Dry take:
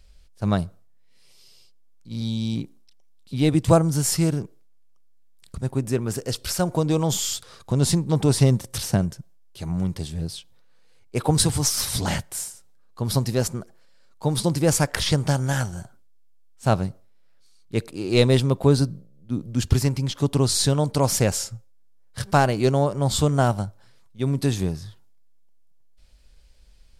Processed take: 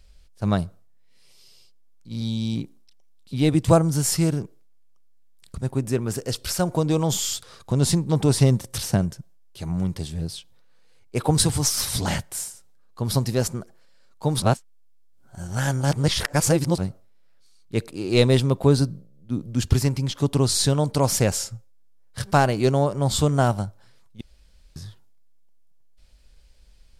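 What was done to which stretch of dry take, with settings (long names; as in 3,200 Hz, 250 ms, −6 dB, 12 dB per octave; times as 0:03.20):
0:14.42–0:16.78: reverse
0:24.21–0:24.76: fill with room tone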